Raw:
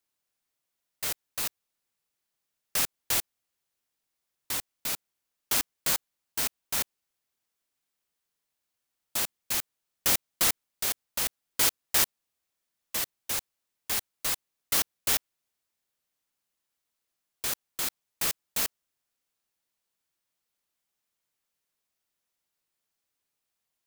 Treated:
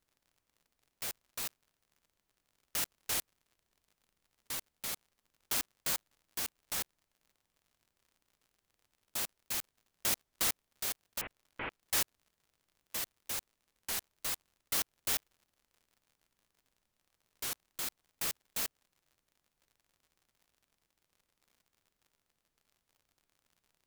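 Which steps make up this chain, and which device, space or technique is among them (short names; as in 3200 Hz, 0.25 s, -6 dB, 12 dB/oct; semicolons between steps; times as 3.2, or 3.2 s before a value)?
11.21–11.83 steep low-pass 2700 Hz 48 dB/oct; warped LP (record warp 33 1/3 rpm, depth 160 cents; crackle 72/s -48 dBFS; pink noise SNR 43 dB); gain -7 dB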